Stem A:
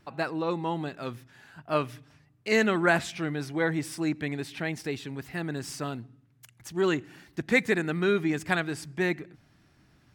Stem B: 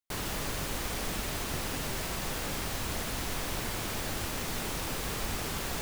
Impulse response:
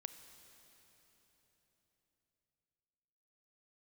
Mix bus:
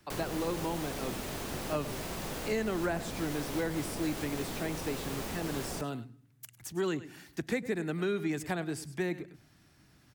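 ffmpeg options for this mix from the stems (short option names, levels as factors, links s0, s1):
-filter_complex "[0:a]highshelf=f=5800:g=10.5,volume=0.841,asplit=2[s0][s1];[s1]volume=0.133[s2];[1:a]volume=1.06[s3];[s2]aecho=0:1:101:1[s4];[s0][s3][s4]amix=inputs=3:normalize=0,acrossover=split=120|250|780[s5][s6][s7][s8];[s5]acompressor=threshold=0.00562:ratio=4[s9];[s6]acompressor=threshold=0.00891:ratio=4[s10];[s7]acompressor=threshold=0.0251:ratio=4[s11];[s8]acompressor=threshold=0.00891:ratio=4[s12];[s9][s10][s11][s12]amix=inputs=4:normalize=0"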